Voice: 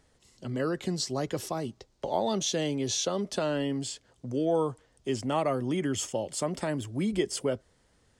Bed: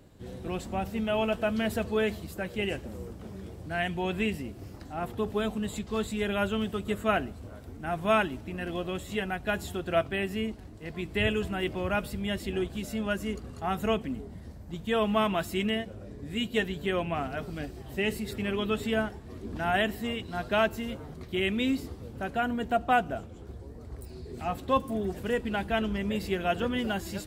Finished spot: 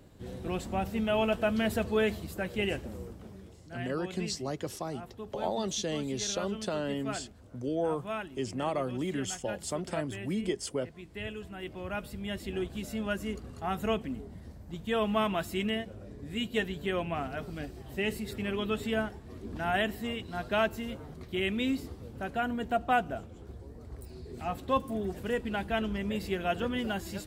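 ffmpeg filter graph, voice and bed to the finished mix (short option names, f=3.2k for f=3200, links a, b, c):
-filter_complex "[0:a]adelay=3300,volume=-4dB[a];[1:a]volume=9.5dB,afade=t=out:st=2.8:d=0.81:silence=0.251189,afade=t=in:st=11.44:d=1.35:silence=0.334965[b];[a][b]amix=inputs=2:normalize=0"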